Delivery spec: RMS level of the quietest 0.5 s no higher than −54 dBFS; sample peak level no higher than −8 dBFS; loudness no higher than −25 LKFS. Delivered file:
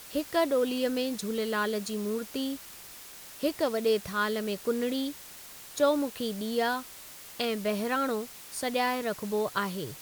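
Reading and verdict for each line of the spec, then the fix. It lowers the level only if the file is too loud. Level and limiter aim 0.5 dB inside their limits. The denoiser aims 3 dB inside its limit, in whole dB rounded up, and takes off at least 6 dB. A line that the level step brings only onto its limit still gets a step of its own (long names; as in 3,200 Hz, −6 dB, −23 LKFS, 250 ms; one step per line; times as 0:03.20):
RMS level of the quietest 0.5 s −47 dBFS: out of spec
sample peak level −13.0 dBFS: in spec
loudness −30.0 LKFS: in spec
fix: broadband denoise 10 dB, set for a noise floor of −47 dBFS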